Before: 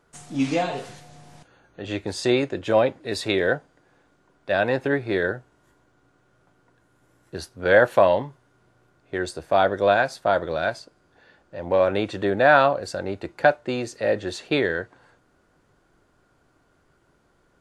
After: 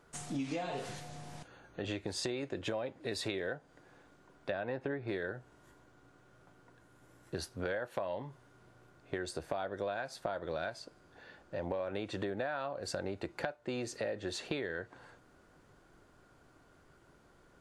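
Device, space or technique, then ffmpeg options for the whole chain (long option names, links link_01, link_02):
serial compression, peaks first: -filter_complex "[0:a]acompressor=threshold=-28dB:ratio=6,acompressor=threshold=-38dB:ratio=2,asettb=1/sr,asplit=3[link_01][link_02][link_03];[link_01]atrim=end=4.504[link_04];[link_02]atrim=start=4.5:end=5.08,asetpts=PTS-STARTPTS,afade=type=in:duration=0.004:curve=qsin,afade=type=out:start_time=0.576:duration=0.004:curve=qsin,aemphasis=mode=reproduction:type=75fm[link_05];[link_03]atrim=start=5.076[link_06];[link_04][link_05]acrossfade=duration=0.004:curve1=hsin:curve2=qsin[link_07];[link_07][link_06]acrossfade=duration=0.004:curve1=qsin:curve2=hsin"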